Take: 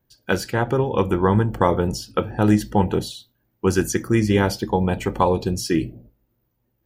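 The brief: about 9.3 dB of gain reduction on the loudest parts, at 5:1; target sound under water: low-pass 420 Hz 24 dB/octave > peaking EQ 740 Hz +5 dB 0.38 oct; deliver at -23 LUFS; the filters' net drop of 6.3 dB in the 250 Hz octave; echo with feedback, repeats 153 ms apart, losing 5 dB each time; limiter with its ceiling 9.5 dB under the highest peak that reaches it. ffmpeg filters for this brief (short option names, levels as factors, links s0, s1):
-af "equalizer=f=250:t=o:g=-9,acompressor=threshold=0.0562:ratio=5,alimiter=limit=0.1:level=0:latency=1,lowpass=f=420:w=0.5412,lowpass=f=420:w=1.3066,equalizer=f=740:t=o:w=0.38:g=5,aecho=1:1:153|306|459|612|765|918|1071:0.562|0.315|0.176|0.0988|0.0553|0.031|0.0173,volume=3.55"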